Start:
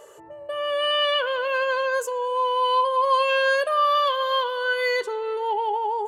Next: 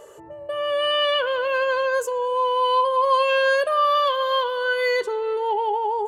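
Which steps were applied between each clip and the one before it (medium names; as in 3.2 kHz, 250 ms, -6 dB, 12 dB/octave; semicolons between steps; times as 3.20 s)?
bass shelf 380 Hz +7.5 dB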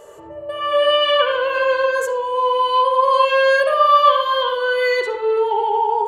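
reverberation RT60 0.55 s, pre-delay 50 ms, DRR 1 dB; trim +1.5 dB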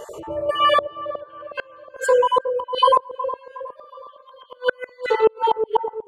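random holes in the spectrogram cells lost 29%; inverted gate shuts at -12 dBFS, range -39 dB; feedback echo behind a low-pass 365 ms, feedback 40%, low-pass 760 Hz, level -7 dB; trim +7 dB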